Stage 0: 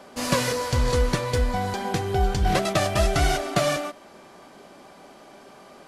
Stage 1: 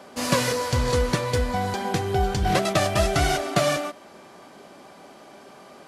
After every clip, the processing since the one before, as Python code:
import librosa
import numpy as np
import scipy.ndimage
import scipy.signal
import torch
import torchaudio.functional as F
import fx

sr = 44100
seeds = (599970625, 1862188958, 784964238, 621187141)

y = scipy.signal.sosfilt(scipy.signal.butter(2, 61.0, 'highpass', fs=sr, output='sos'), x)
y = y * 10.0 ** (1.0 / 20.0)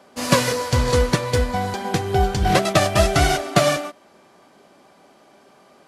y = fx.upward_expand(x, sr, threshold_db=-40.0, expansion=1.5)
y = y * 10.0 ** (6.0 / 20.0)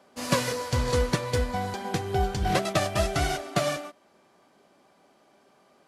y = fx.rider(x, sr, range_db=10, speed_s=2.0)
y = y * 10.0 ** (-8.0 / 20.0)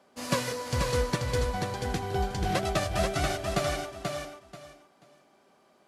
y = fx.echo_feedback(x, sr, ms=485, feedback_pct=22, wet_db=-4.5)
y = y * 10.0 ** (-3.5 / 20.0)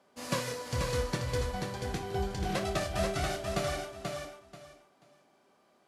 y = fx.room_early_taps(x, sr, ms=(26, 56), db=(-9.0, -12.0))
y = y * 10.0 ** (-4.5 / 20.0)